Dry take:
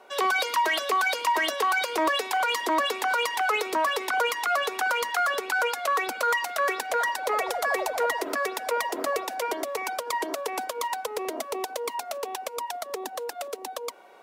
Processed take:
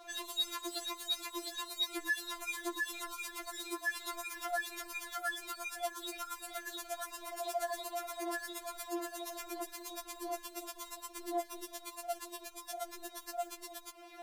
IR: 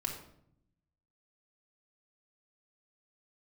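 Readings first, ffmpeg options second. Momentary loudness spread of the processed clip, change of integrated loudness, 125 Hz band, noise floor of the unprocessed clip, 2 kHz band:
9 LU, −13.0 dB, can't be measured, −42 dBFS, −14.0 dB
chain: -filter_complex "[0:a]acrossover=split=310|6100[link_01][link_02][link_03];[link_01]acompressor=threshold=-52dB:ratio=4[link_04];[link_02]acompressor=threshold=-39dB:ratio=4[link_05];[link_03]acompressor=threshold=-40dB:ratio=4[link_06];[link_04][link_05][link_06]amix=inputs=3:normalize=0,alimiter=level_in=7.5dB:limit=-24dB:level=0:latency=1:release=43,volume=-7.5dB,areverse,acompressor=mode=upward:threshold=-57dB:ratio=2.5,areverse,aeval=exprs='sgn(val(0))*max(abs(val(0))-0.00119,0)':channel_layout=same,afftfilt=real='re*4*eq(mod(b,16),0)':imag='im*4*eq(mod(b,16),0)':win_size=2048:overlap=0.75,volume=8dB"

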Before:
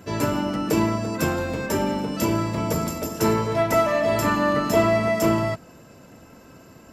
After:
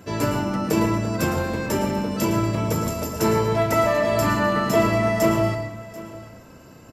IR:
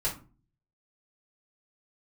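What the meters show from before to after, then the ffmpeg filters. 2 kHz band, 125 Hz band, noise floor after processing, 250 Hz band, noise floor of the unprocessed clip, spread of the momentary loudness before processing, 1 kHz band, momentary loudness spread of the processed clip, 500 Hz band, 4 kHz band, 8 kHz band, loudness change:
+1.0 dB, +3.0 dB, −46 dBFS, +0.5 dB, −48 dBFS, 6 LU, +0.5 dB, 10 LU, +0.5 dB, +0.5 dB, +0.5 dB, +0.5 dB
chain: -filter_complex "[0:a]aecho=1:1:738:0.126,asplit=2[link_01][link_02];[1:a]atrim=start_sample=2205,adelay=107[link_03];[link_02][link_03]afir=irnorm=-1:irlink=0,volume=-13dB[link_04];[link_01][link_04]amix=inputs=2:normalize=0"

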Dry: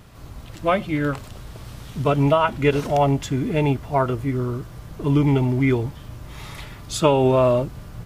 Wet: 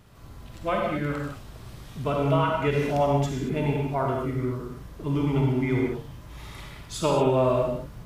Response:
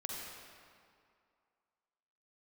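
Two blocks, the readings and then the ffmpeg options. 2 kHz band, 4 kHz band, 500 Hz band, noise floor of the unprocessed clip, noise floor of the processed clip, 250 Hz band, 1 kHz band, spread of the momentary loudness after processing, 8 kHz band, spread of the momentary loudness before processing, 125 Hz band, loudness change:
−5.0 dB, −5.5 dB, −4.5 dB, −40 dBFS, −45 dBFS, −5.0 dB, −4.5 dB, 19 LU, −5.5 dB, 20 LU, −5.0 dB, −5.0 dB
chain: -filter_complex "[1:a]atrim=start_sample=2205,afade=type=out:start_time=0.28:duration=0.01,atrim=end_sample=12789[link_01];[0:a][link_01]afir=irnorm=-1:irlink=0,volume=-4.5dB"

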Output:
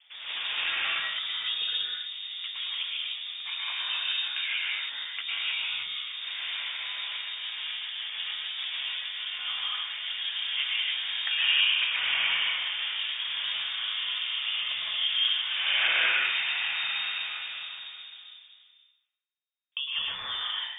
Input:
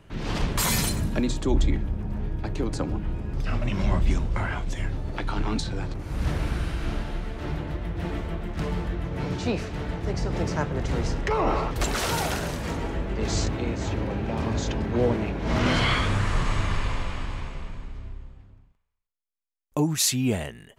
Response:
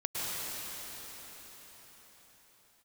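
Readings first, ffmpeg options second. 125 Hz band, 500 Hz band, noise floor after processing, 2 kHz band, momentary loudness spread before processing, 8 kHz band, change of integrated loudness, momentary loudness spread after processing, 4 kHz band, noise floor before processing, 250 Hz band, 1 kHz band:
below −40 dB, below −20 dB, −61 dBFS, +5.0 dB, 10 LU, below −40 dB, −0.5 dB, 10 LU, +10.5 dB, −61 dBFS, below −35 dB, −10.0 dB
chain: -filter_complex "[0:a]acrossover=split=110|490|2400[link_01][link_02][link_03][link_04];[link_02]acompressor=threshold=-42dB:ratio=6[link_05];[link_01][link_05][link_03][link_04]amix=inputs=4:normalize=0,acrossover=split=200 2500:gain=0.141 1 0.0891[link_06][link_07][link_08];[link_06][link_07][link_08]amix=inputs=3:normalize=0,lowpass=frequency=3100:width_type=q:width=0.5098,lowpass=frequency=3100:width_type=q:width=0.6013,lowpass=frequency=3100:width_type=q:width=0.9,lowpass=frequency=3100:width_type=q:width=2.563,afreqshift=-3700[link_09];[1:a]atrim=start_sample=2205,afade=type=out:start_time=0.37:duration=0.01,atrim=end_sample=16758[link_10];[link_09][link_10]afir=irnorm=-1:irlink=0,adynamicequalizer=threshold=0.00178:dfrequency=390:dqfactor=1:tfrequency=390:tqfactor=1:attack=5:release=100:ratio=0.375:range=2.5:mode=cutabove:tftype=bell"

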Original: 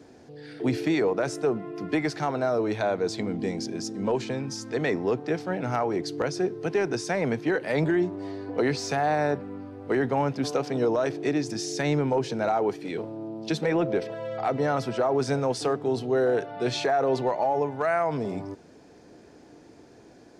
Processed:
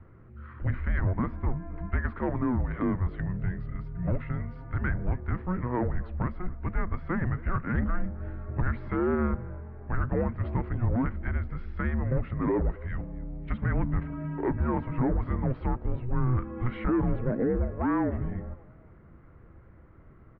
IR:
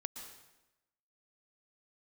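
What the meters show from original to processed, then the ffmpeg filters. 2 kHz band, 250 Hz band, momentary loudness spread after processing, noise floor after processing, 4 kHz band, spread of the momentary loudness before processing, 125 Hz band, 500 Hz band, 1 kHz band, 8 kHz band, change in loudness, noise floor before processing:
−5.5 dB, −2.0 dB, 9 LU, −52 dBFS, below −25 dB, 8 LU, +5.0 dB, −10.0 dB, −7.5 dB, below −40 dB, −3.5 dB, −52 dBFS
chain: -filter_complex "[0:a]asoftclip=type=tanh:threshold=-18dB,asplit=4[link_01][link_02][link_03][link_04];[link_02]adelay=267,afreqshift=110,volume=-22.5dB[link_05];[link_03]adelay=534,afreqshift=220,volume=-31.1dB[link_06];[link_04]adelay=801,afreqshift=330,volume=-39.8dB[link_07];[link_01][link_05][link_06][link_07]amix=inputs=4:normalize=0,highpass=frequency=170:width_type=q:width=0.5412,highpass=frequency=170:width_type=q:width=1.307,lowpass=frequency=2400:width_type=q:width=0.5176,lowpass=frequency=2400:width_type=q:width=0.7071,lowpass=frequency=2400:width_type=q:width=1.932,afreqshift=-370"

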